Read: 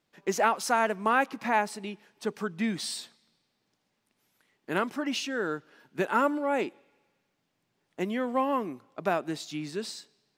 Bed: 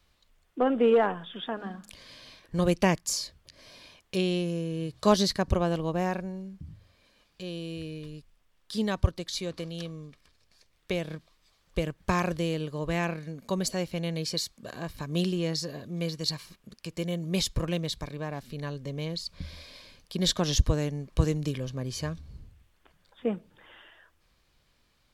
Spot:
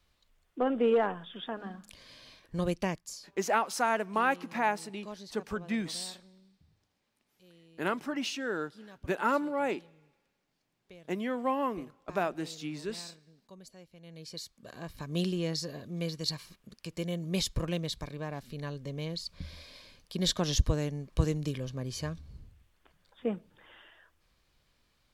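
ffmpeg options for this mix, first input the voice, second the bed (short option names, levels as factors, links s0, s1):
-filter_complex "[0:a]adelay=3100,volume=0.708[s0];[1:a]volume=5.96,afade=t=out:st=2.45:d=0.88:silence=0.11885,afade=t=in:st=14:d=1.24:silence=0.105925[s1];[s0][s1]amix=inputs=2:normalize=0"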